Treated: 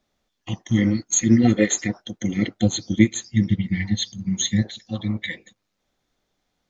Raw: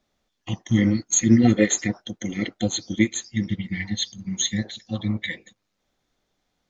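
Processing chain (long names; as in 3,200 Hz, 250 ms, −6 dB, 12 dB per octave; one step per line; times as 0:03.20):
0:02.22–0:04.67: parametric band 110 Hz +7.5 dB 2.6 octaves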